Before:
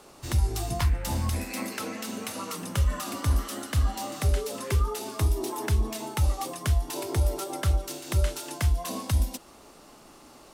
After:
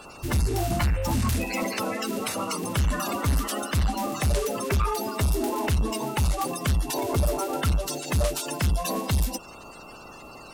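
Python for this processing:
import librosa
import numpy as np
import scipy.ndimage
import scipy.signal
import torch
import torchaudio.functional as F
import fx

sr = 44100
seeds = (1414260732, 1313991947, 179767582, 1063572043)

y = fx.spec_quant(x, sr, step_db=30)
y = 10.0 ** (-26.5 / 20.0) * np.tanh(y / 10.0 ** (-26.5 / 20.0))
y = y + 10.0 ** (-57.0 / 20.0) * np.sin(2.0 * np.pi * 2700.0 * np.arange(len(y)) / sr)
y = y * 10.0 ** (7.5 / 20.0)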